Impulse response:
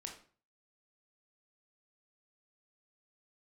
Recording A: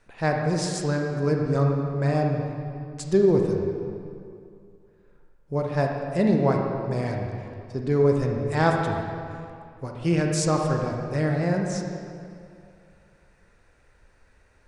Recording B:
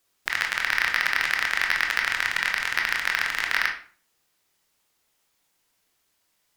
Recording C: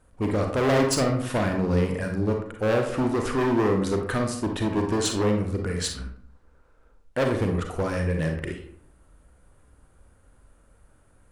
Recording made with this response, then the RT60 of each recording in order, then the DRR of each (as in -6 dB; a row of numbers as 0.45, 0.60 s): B; 2.5, 0.40, 0.60 s; 1.0, 1.0, 2.5 dB